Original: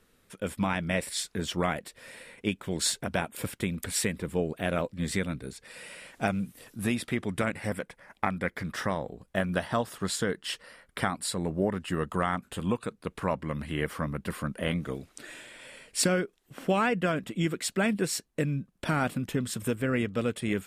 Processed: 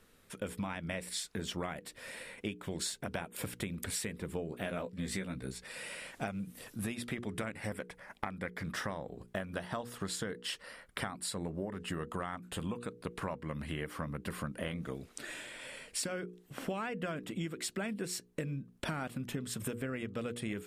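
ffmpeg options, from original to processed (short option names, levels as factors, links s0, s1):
-filter_complex "[0:a]asettb=1/sr,asplit=3[s0][s1][s2];[s0]atrim=end=4.504[s3];[s1]atrim=start=4.5:end=5.67,asetpts=PTS-STARTPTS,afade=t=in:d=0.004:c=qsin,afade=t=out:st=1.166:d=0.004:c=qsin,asplit=2[s4][s5];[s5]adelay=16,volume=0.562[s6];[s4][s6]amix=inputs=2:normalize=0,atrim=end_sample=51597[s7];[s2]atrim=start=5.666[s8];[s3][s7]acrossfade=d=0.004:c1=hsin:c2=qsin[s9];[s9][s8]acrossfade=d=0.004:c1=qsin:c2=hsin,bandreject=f=60:t=h:w=6,bandreject=f=120:t=h:w=6,bandreject=f=180:t=h:w=6,bandreject=f=240:t=h:w=6,bandreject=f=300:t=h:w=6,bandreject=f=360:t=h:w=6,bandreject=f=420:t=h:w=6,bandreject=f=480:t=h:w=6,acompressor=threshold=0.0158:ratio=6,volume=1.12"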